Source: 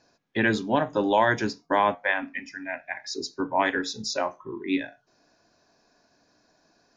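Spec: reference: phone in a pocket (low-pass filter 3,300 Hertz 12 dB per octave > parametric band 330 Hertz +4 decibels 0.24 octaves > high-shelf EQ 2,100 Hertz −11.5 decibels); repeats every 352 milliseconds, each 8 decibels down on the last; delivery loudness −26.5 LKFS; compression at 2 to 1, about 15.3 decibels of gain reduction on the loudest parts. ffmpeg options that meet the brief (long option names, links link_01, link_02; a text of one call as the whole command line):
ffmpeg -i in.wav -af "acompressor=threshold=-46dB:ratio=2,lowpass=3300,equalizer=frequency=330:width_type=o:width=0.24:gain=4,highshelf=frequency=2100:gain=-11.5,aecho=1:1:352|704|1056|1408|1760:0.398|0.159|0.0637|0.0255|0.0102,volume=14.5dB" out.wav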